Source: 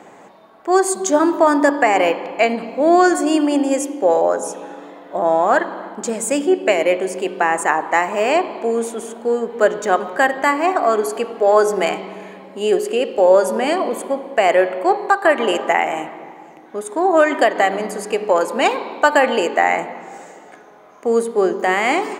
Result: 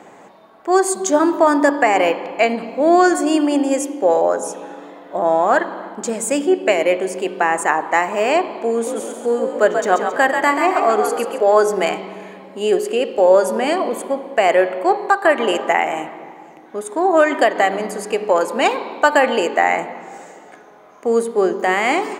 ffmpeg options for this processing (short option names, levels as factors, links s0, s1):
-filter_complex "[0:a]asettb=1/sr,asplit=3[s0][s1][s2];[s0]atrim=end=8.734[s3];[s1]atrim=start=8.73:end=11.44,asetpts=PTS-STARTPTS,afade=t=in:d=0.004:c=qsin,afade=t=out:st=2.706:d=0.004:c=qsin,asplit=6[s4][s5][s6][s7][s8][s9];[s5]adelay=135,afreqshift=52,volume=0.501[s10];[s6]adelay=270,afreqshift=104,volume=0.191[s11];[s7]adelay=405,afreqshift=156,volume=0.0724[s12];[s8]adelay=540,afreqshift=208,volume=0.0275[s13];[s9]adelay=675,afreqshift=260,volume=0.0105[s14];[s4][s10][s11][s12][s13][s14]amix=inputs=6:normalize=0,atrim=end_sample=119511[s15];[s2]atrim=start=11.436[s16];[s3][s15]acrossfade=d=0.004:c1=hsin:c2=qsin[s17];[s17][s16]acrossfade=d=0.004:c1=qsin:c2=hsin"